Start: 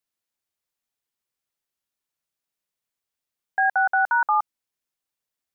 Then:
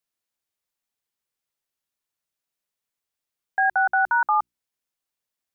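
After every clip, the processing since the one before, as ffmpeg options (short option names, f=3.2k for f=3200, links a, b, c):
-af "bandreject=f=60:t=h:w=6,bandreject=f=120:t=h:w=6,bandreject=f=180:t=h:w=6,bandreject=f=240:t=h:w=6,bandreject=f=300:t=h:w=6,bandreject=f=360:t=h:w=6"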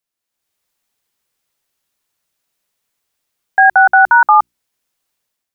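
-af "dynaudnorm=f=160:g=5:m=10.5dB,volume=2.5dB"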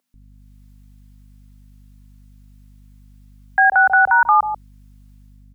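-filter_complex "[0:a]aeval=exprs='val(0)+0.00316*(sin(2*PI*50*n/s)+sin(2*PI*2*50*n/s)/2+sin(2*PI*3*50*n/s)/3+sin(2*PI*4*50*n/s)/4+sin(2*PI*5*50*n/s)/5)':c=same,acrossover=split=540[a][b];[a]adelay=140[c];[c][b]amix=inputs=2:normalize=0,alimiter=level_in=9.5dB:limit=-1dB:release=50:level=0:latency=1,volume=-5dB"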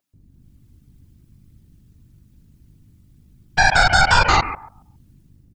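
-af "aecho=1:1:137|274|411:0.316|0.0569|0.0102,aeval=exprs='0.668*(cos(1*acos(clip(val(0)/0.668,-1,1)))-cos(1*PI/2))+0.211*(cos(6*acos(clip(val(0)/0.668,-1,1)))-cos(6*PI/2))':c=same,afftfilt=real='hypot(re,im)*cos(2*PI*random(0))':imag='hypot(re,im)*sin(2*PI*random(1))':win_size=512:overlap=0.75,volume=2.5dB"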